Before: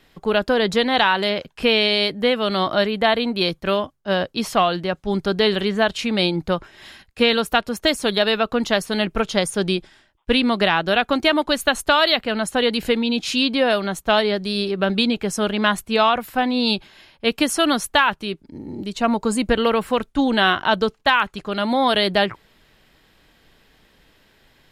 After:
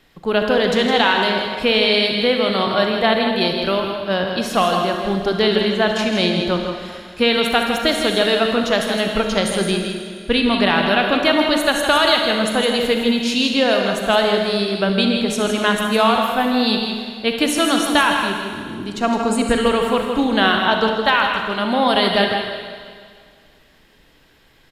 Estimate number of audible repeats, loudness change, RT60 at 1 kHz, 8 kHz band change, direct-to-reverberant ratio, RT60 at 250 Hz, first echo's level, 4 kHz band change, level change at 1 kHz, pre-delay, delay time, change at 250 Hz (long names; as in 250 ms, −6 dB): 1, +2.5 dB, 2.0 s, +2.5 dB, 1.5 dB, 2.0 s, −7.5 dB, +2.5 dB, +2.0 dB, 38 ms, 161 ms, +2.5 dB